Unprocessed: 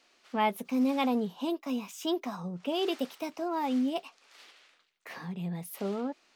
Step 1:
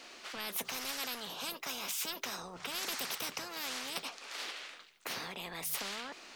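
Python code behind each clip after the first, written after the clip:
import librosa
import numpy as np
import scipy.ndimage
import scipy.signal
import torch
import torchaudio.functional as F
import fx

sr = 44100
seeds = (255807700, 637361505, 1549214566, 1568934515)

y = fx.hum_notches(x, sr, base_hz=50, count=3)
y = fx.spectral_comp(y, sr, ratio=10.0)
y = F.gain(torch.from_numpy(y), -2.5).numpy()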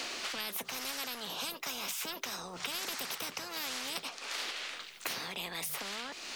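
y = fx.band_squash(x, sr, depth_pct=100)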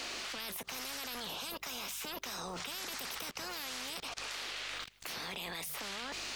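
y = fx.add_hum(x, sr, base_hz=50, snr_db=24)
y = fx.level_steps(y, sr, step_db=24)
y = fx.record_warp(y, sr, rpm=78.0, depth_cents=100.0)
y = F.gain(torch.from_numpy(y), 6.5).numpy()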